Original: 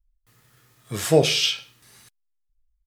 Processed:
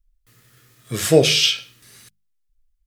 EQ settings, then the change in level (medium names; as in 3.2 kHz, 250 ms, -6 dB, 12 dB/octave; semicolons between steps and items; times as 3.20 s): peaking EQ 870 Hz -8.5 dB 0.76 oct; hum notches 50/100/150/200 Hz; +5.0 dB